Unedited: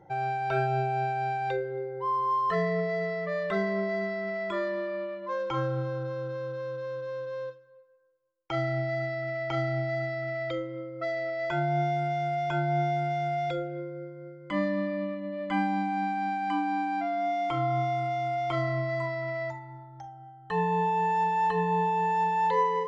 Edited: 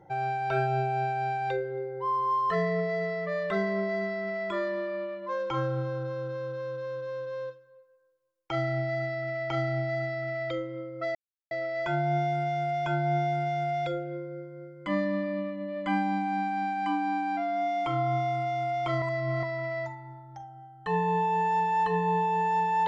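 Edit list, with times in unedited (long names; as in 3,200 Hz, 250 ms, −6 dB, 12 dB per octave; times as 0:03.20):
0:11.15: splice in silence 0.36 s
0:18.66–0:19.07: reverse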